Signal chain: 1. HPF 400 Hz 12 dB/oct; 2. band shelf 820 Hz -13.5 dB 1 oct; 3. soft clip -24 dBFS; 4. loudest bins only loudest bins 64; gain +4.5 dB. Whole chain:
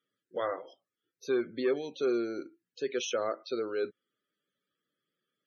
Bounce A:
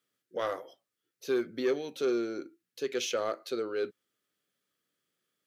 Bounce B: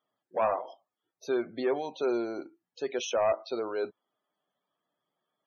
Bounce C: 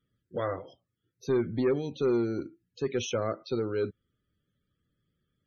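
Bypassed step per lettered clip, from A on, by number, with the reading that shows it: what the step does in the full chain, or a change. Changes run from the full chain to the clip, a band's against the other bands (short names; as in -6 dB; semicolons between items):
4, 4 kHz band +1.5 dB; 2, 1 kHz band +7.0 dB; 1, 125 Hz band +19.0 dB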